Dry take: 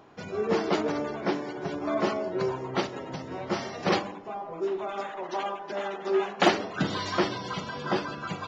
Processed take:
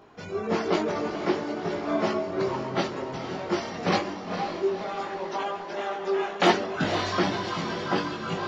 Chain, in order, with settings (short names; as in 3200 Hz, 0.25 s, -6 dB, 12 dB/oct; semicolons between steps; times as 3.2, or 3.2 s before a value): diffused feedback echo 0.5 s, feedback 56%, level -8 dB; chorus voices 6, 0.48 Hz, delay 20 ms, depth 2.9 ms; gain +4 dB